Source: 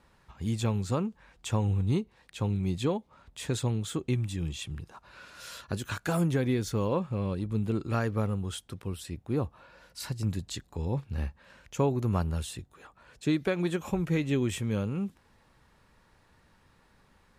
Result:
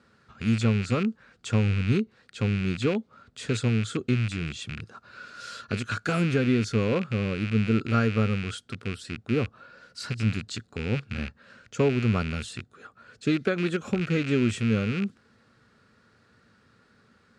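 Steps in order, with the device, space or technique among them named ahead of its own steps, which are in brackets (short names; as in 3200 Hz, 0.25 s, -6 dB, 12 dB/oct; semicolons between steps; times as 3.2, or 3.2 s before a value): car door speaker with a rattle (rattling part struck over -34 dBFS, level -25 dBFS; speaker cabinet 94–8600 Hz, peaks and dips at 110 Hz +7 dB, 230 Hz +9 dB, 440 Hz +6 dB, 910 Hz -9 dB, 1400 Hz +10 dB, 4500 Hz +5 dB)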